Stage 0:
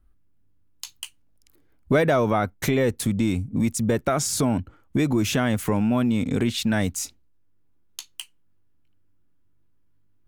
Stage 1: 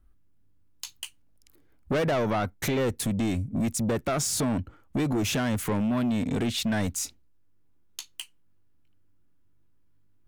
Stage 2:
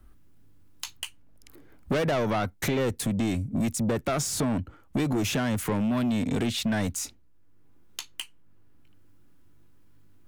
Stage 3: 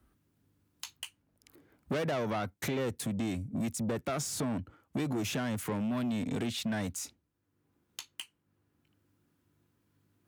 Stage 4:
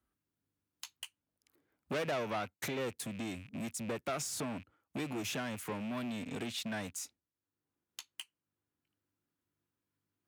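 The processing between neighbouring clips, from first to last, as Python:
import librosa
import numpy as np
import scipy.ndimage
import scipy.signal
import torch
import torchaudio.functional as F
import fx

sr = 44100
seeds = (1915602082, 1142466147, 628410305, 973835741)

y1 = 10.0 ** (-22.0 / 20.0) * np.tanh(x / 10.0 ** (-22.0 / 20.0))
y2 = fx.band_squash(y1, sr, depth_pct=40)
y3 = scipy.signal.sosfilt(scipy.signal.butter(2, 80.0, 'highpass', fs=sr, output='sos'), y2)
y3 = F.gain(torch.from_numpy(y3), -6.5).numpy()
y4 = fx.rattle_buzz(y3, sr, strikes_db=-42.0, level_db=-38.0)
y4 = fx.low_shelf(y4, sr, hz=340.0, db=-7.5)
y4 = fx.upward_expand(y4, sr, threshold_db=-55.0, expansion=1.5)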